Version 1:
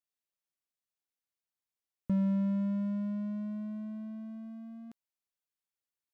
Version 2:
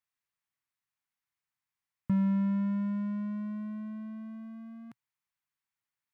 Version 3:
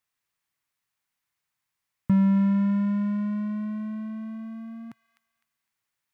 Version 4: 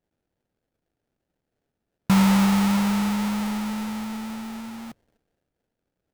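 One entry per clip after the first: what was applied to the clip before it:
graphic EQ 125/500/1000/2000 Hz +11/-7/+8/+8 dB; trim -2 dB
feedback echo behind a high-pass 254 ms, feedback 31%, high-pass 2 kHz, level -7 dB; trim +7 dB
sample-rate reducer 1.1 kHz, jitter 20%; trim +2.5 dB

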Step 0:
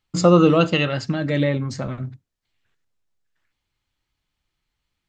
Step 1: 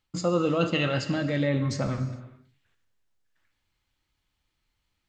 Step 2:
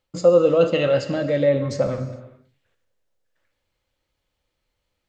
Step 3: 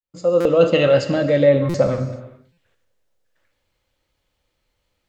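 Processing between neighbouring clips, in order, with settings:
reverse; compression 4:1, threshold -23 dBFS, peak gain reduction 12 dB; reverse; gated-style reverb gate 460 ms falling, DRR 8 dB
peaking EQ 530 Hz +14 dB 0.6 oct
fade-in on the opening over 0.73 s; buffer glitch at 0.40/1.69/2.52 s, samples 256, times 8; trim +4.5 dB

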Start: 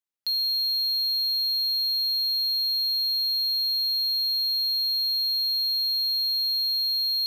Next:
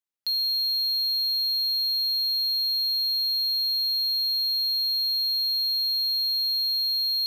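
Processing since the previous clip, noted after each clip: no audible change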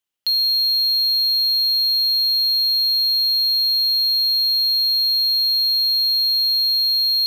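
peaking EQ 3 kHz +9 dB 0.29 oct; trim +6.5 dB

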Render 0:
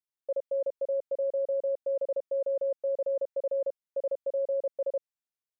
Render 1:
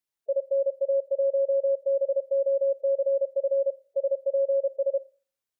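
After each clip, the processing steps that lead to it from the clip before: spectral gate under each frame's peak -15 dB strong; Schroeder reverb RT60 0.41 s, combs from 28 ms, DRR 19 dB; trim +5 dB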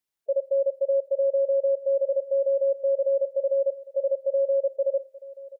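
delay 881 ms -18.5 dB; trim +1.5 dB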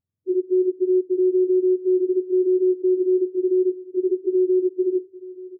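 spectrum inverted on a logarithmic axis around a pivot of 450 Hz; trim +4.5 dB

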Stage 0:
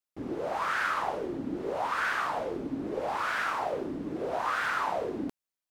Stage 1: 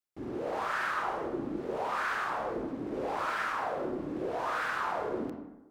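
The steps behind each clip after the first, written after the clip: in parallel at -4 dB: hard clipper -36 dBFS, distortion -6 dB; on the sum: reverberation RT60 1.0 s, pre-delay 23 ms, DRR 1 dB; trim -7 dB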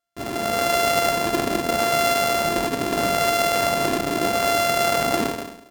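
sorted samples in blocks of 64 samples; level rider gain up to 4 dB; trim +8.5 dB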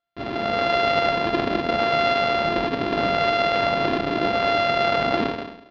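steep low-pass 4.4 kHz 36 dB/octave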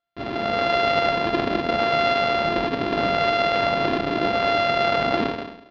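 no audible change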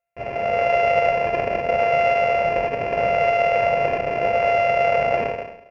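FFT filter 130 Hz 0 dB, 320 Hz -15 dB, 510 Hz +9 dB, 1.3 kHz -8 dB, 2.6 kHz +6 dB, 3.7 kHz -27 dB, 5.5 kHz -4 dB, 9.1 kHz +1 dB

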